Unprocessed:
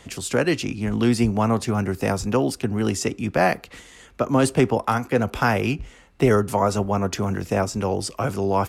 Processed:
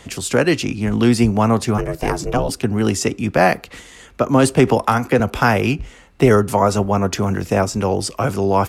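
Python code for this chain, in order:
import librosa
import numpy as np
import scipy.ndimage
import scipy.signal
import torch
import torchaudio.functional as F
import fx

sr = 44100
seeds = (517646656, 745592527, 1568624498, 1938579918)

y = fx.ring_mod(x, sr, carrier_hz=240.0, at=(1.77, 2.48), fade=0.02)
y = fx.band_squash(y, sr, depth_pct=70, at=(4.67, 5.2))
y = y * librosa.db_to_amplitude(5.0)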